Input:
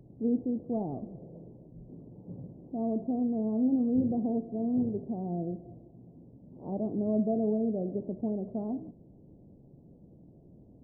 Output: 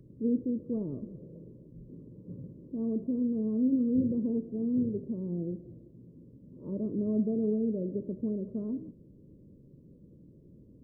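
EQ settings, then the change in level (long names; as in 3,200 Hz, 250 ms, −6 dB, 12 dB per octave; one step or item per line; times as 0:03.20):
Butterworth band-reject 760 Hz, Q 1.5
0.0 dB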